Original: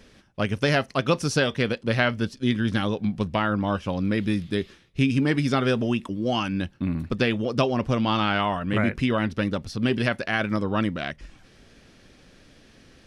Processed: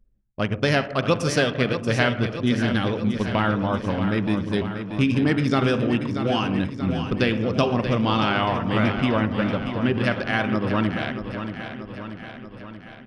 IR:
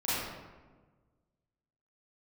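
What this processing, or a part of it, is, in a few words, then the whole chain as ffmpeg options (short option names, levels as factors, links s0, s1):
keyed gated reverb: -filter_complex "[0:a]asettb=1/sr,asplit=3[s0][s1][s2];[s0]atrim=end=9.164[s3];[s1]atrim=start=9.16:end=10.04,asetpts=PTS-STARTPTS,afade=t=in:d=0.004:c=qsin,afade=t=out:st=0.876:d=0.004:c=qsin,acrossover=split=3100[s4][s5];[s5]acompressor=threshold=0.00562:ratio=4:attack=1:release=60[s6];[s4][s6]amix=inputs=2:normalize=0[s7];[s2]atrim=start=10.036[s8];[s3][s7]acrossfade=d=0.004:c1=hsin:c2=qsin[s9];[s9][s8]acrossfade=d=0.004:c1=qsin:c2=hsin,asplit=3[s10][s11][s12];[1:a]atrim=start_sample=2205[s13];[s11][s13]afir=irnorm=-1:irlink=0[s14];[s12]apad=whole_len=576339[s15];[s14][s15]sidechaingate=range=0.0224:threshold=0.00562:ratio=16:detection=peak,volume=0.141[s16];[s10][s16]amix=inputs=2:normalize=0,anlmdn=25.1,aecho=1:1:633|1266|1899|2532|3165|3798|4431:0.355|0.213|0.128|0.0766|0.046|0.0276|0.0166"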